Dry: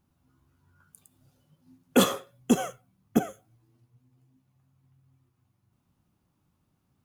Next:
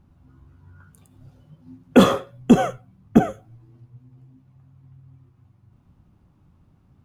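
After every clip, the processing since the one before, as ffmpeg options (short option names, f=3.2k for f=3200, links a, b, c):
-filter_complex "[0:a]lowpass=f=1.8k:p=1,asplit=2[a][b];[b]alimiter=limit=-20.5dB:level=0:latency=1:release=12,volume=3dB[c];[a][c]amix=inputs=2:normalize=0,lowshelf=f=110:g=11,volume=3.5dB"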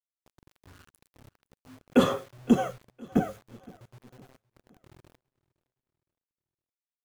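-af "flanger=delay=7.6:depth=3.4:regen=-39:speed=0.47:shape=sinusoidal,acrusher=bits=7:mix=0:aa=0.000001,aecho=1:1:514|1028|1542:0.0631|0.029|0.0134,volume=-4.5dB"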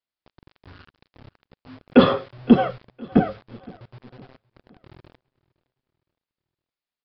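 -af "aresample=11025,aresample=44100,volume=7.5dB"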